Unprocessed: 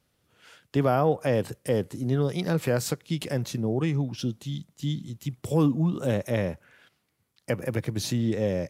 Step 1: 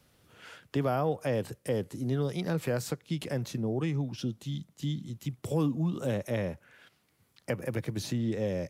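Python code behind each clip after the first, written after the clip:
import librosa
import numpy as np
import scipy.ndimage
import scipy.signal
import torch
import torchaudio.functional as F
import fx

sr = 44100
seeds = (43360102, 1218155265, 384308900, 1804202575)

y = fx.band_squash(x, sr, depth_pct=40)
y = F.gain(torch.from_numpy(y), -5.0).numpy()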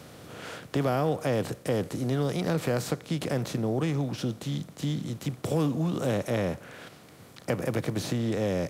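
y = fx.bin_compress(x, sr, power=0.6)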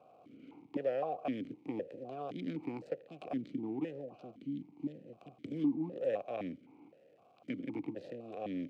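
y = fx.wiener(x, sr, points=25)
y = fx.dmg_crackle(y, sr, seeds[0], per_s=350.0, level_db=-48.0)
y = fx.vowel_held(y, sr, hz=3.9)
y = F.gain(torch.from_numpy(y), 1.5).numpy()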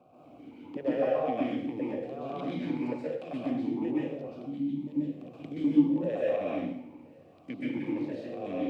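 y = fx.dmg_noise_band(x, sr, seeds[1], low_hz=81.0, high_hz=360.0, level_db=-68.0)
y = fx.rev_plate(y, sr, seeds[2], rt60_s=0.71, hf_ratio=0.95, predelay_ms=115, drr_db=-7.0)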